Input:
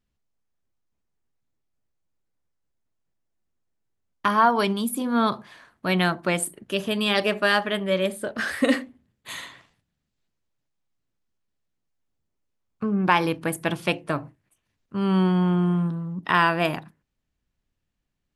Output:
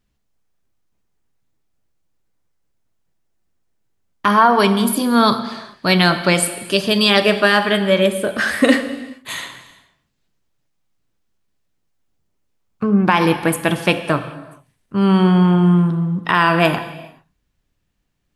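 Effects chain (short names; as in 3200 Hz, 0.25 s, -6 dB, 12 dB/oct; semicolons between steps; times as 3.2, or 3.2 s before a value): 4.87–7.1 bell 4700 Hz +14 dB 0.39 oct; non-linear reverb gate 0.46 s falling, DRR 9.5 dB; maximiser +9 dB; gain -1 dB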